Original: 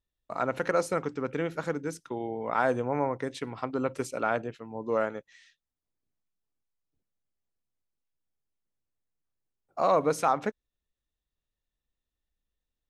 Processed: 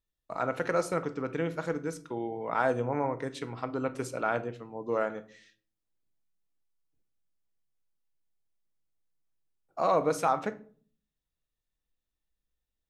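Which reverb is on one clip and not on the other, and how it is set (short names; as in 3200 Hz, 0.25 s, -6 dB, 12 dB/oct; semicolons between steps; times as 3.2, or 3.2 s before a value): shoebox room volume 410 m³, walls furnished, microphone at 0.62 m; gain -2 dB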